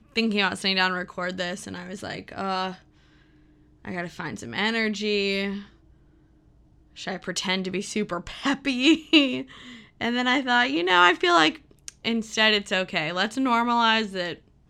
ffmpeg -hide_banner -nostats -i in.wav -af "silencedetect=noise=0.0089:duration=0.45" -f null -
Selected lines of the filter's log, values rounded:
silence_start: 2.76
silence_end: 3.85 | silence_duration: 1.09
silence_start: 5.66
silence_end: 6.97 | silence_duration: 1.30